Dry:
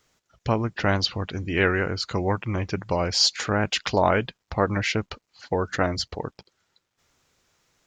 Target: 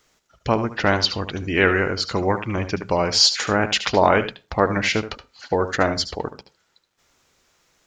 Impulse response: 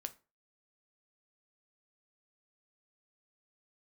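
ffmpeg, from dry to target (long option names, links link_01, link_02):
-filter_complex "[0:a]equalizer=frequency=110:width=0.99:gain=-5.5,asplit=2[link_01][link_02];[1:a]atrim=start_sample=2205,adelay=74[link_03];[link_02][link_03]afir=irnorm=-1:irlink=0,volume=-8.5dB[link_04];[link_01][link_04]amix=inputs=2:normalize=0,volume=4.5dB"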